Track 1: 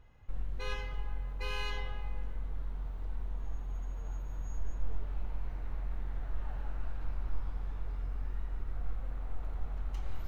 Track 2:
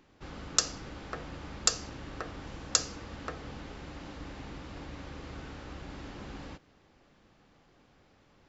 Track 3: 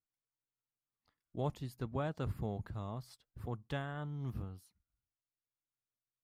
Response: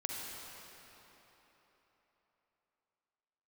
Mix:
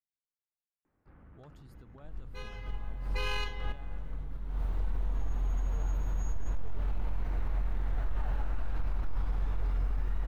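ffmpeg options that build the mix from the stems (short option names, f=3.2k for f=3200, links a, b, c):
-filter_complex "[0:a]dynaudnorm=f=190:g=9:m=5.5dB,adelay=1750,volume=2.5dB[a];[1:a]lowpass=f=1.9k:w=0.5412,lowpass=f=1.9k:w=1.3066,asubboost=boost=10.5:cutoff=230,asoftclip=type=tanh:threshold=-32dB,adelay=850,volume=-14.5dB[b];[2:a]volume=-11.5dB,asplit=2[c][d];[d]apad=whole_len=530296[e];[a][e]sidechaincompress=threshold=-59dB:ratio=8:attack=16:release=184[f];[b][c]amix=inputs=2:normalize=0,asoftclip=type=tanh:threshold=-36dB,alimiter=level_in=21.5dB:limit=-24dB:level=0:latency=1:release=42,volume=-21.5dB,volume=0dB[g];[f][g]amix=inputs=2:normalize=0,alimiter=limit=-23.5dB:level=0:latency=1:release=25"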